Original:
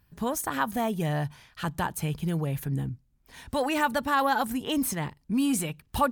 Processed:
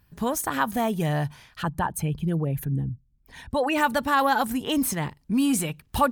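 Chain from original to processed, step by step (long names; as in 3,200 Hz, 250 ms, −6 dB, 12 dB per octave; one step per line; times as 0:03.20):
0:01.62–0:03.78: spectral envelope exaggerated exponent 1.5
level +3 dB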